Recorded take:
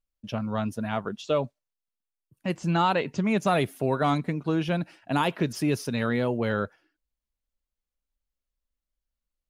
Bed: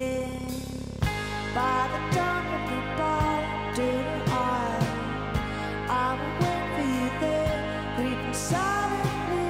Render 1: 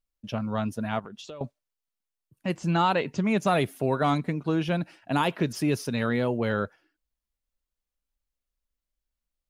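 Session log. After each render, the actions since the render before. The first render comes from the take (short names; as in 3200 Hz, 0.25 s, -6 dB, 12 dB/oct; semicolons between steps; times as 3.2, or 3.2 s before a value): 0.99–1.41 compressor 8:1, threshold -38 dBFS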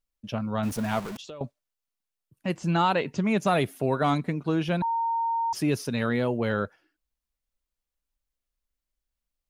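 0.63–1.17 zero-crossing step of -33 dBFS; 4.82–5.53 bleep 920 Hz -23.5 dBFS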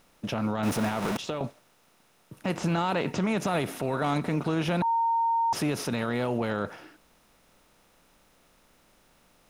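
per-bin compression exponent 0.6; limiter -18.5 dBFS, peak gain reduction 9 dB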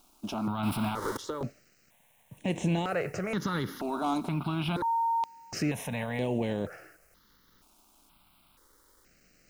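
requantised 10-bit, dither none; step phaser 2.1 Hz 500–4800 Hz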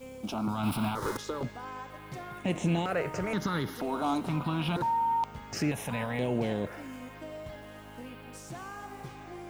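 add bed -16.5 dB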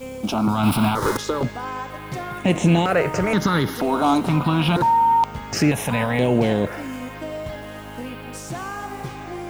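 gain +11.5 dB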